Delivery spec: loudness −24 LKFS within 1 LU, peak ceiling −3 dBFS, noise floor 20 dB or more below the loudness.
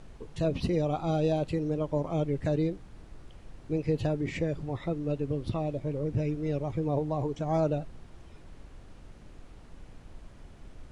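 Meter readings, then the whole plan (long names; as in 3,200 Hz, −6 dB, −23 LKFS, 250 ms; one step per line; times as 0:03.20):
background noise floor −50 dBFS; target noise floor −51 dBFS; integrated loudness −30.5 LKFS; sample peak −17.5 dBFS; target loudness −24.0 LKFS
→ noise reduction from a noise print 6 dB
level +6.5 dB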